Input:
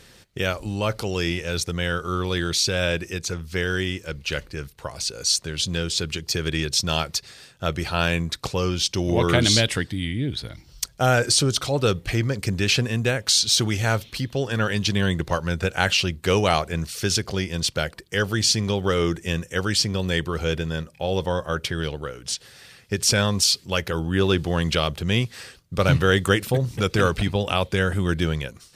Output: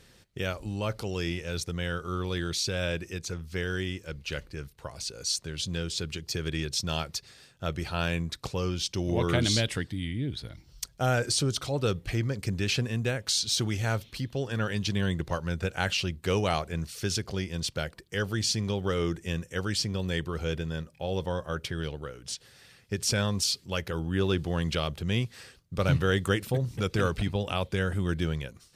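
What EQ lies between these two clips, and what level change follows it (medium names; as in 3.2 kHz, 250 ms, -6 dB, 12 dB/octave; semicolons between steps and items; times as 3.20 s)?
bass shelf 370 Hz +3.5 dB; -8.5 dB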